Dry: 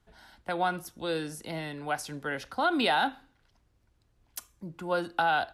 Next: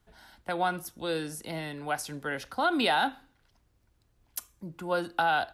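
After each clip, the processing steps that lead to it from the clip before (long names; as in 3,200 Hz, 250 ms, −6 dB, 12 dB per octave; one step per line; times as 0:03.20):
high-shelf EQ 12,000 Hz +9 dB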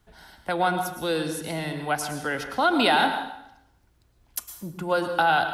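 dense smooth reverb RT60 0.79 s, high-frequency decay 0.85×, pre-delay 95 ms, DRR 7.5 dB
level +5 dB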